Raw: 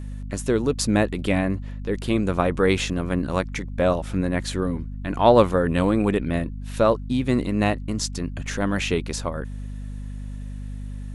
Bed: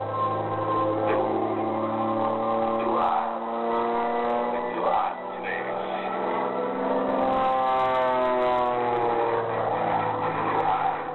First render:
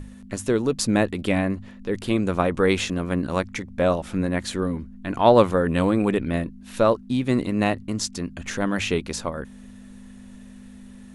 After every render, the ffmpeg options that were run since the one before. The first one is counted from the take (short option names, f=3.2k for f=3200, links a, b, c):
-af "bandreject=f=50:t=h:w=6,bandreject=f=100:t=h:w=6,bandreject=f=150:t=h:w=6"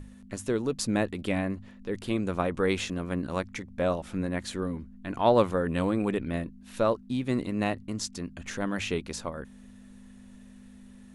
-af "volume=-6.5dB"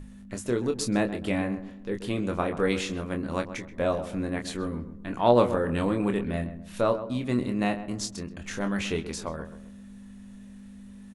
-filter_complex "[0:a]asplit=2[a][b];[b]adelay=25,volume=-6.5dB[c];[a][c]amix=inputs=2:normalize=0,asplit=2[d][e];[e]adelay=130,lowpass=f=1.4k:p=1,volume=-11dB,asplit=2[f][g];[g]adelay=130,lowpass=f=1.4k:p=1,volume=0.38,asplit=2[h][i];[i]adelay=130,lowpass=f=1.4k:p=1,volume=0.38,asplit=2[j][k];[k]adelay=130,lowpass=f=1.4k:p=1,volume=0.38[l];[f][h][j][l]amix=inputs=4:normalize=0[m];[d][m]amix=inputs=2:normalize=0"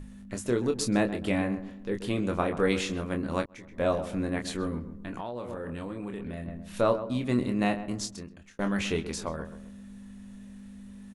-filter_complex "[0:a]asettb=1/sr,asplit=3[a][b][c];[a]atrim=end=4.794[d];[b]atrim=start=4.79:end=6.48,asetpts=PTS-STARTPTS,afade=t=in:d=0.004:c=qsin,afade=t=out:st=1.686:d=0.004:c=qsin,acompressor=threshold=-32dB:ratio=12:attack=3.2:release=140:knee=1:detection=peak[e];[c]atrim=start=6.476[f];[d][e]acrossfade=d=0.004:c1=hsin:c2=qsin[g];[g][f]acrossfade=d=0.004:c1=qsin:c2=hsin,asplit=3[h][i][j];[h]atrim=end=3.46,asetpts=PTS-STARTPTS,afade=t=out:st=3.456:d=0.004:c=hsin[k];[i]atrim=start=3.46:end=8.59,asetpts=PTS-STARTPTS,afade=t=in:d=0.41,afade=t=out:st=4.44:d=0.69[l];[j]atrim=start=8.59,asetpts=PTS-STARTPTS,afade=t=in:d=0.004:c=hsin[m];[k][l][m]concat=n=3:v=0:a=1"